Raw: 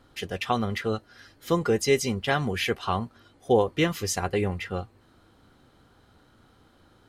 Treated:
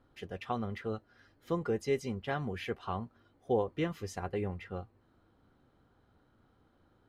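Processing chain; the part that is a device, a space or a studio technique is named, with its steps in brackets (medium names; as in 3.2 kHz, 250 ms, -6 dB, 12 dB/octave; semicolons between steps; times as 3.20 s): through cloth (treble shelf 2.8 kHz -13 dB); trim -8.5 dB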